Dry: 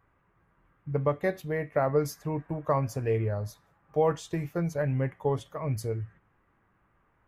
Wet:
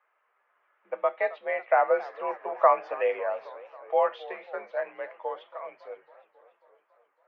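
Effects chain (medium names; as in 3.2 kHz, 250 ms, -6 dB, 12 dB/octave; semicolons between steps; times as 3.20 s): Doppler pass-by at 2.68 s, 10 m/s, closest 10 m; mistuned SSB +50 Hz 500–3300 Hz; modulated delay 274 ms, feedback 67%, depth 203 cents, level -19 dB; trim +8.5 dB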